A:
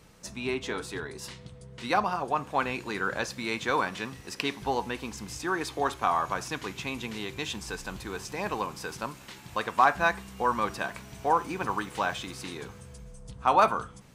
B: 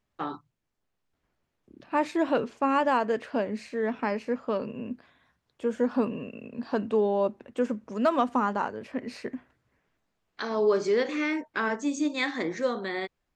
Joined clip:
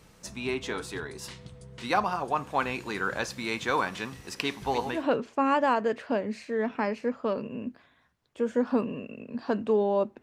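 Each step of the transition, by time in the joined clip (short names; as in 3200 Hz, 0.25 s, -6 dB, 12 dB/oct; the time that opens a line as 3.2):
A
4.46–5.06 reverse delay 0.162 s, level -8.5 dB
4.98 switch to B from 2.22 s, crossfade 0.16 s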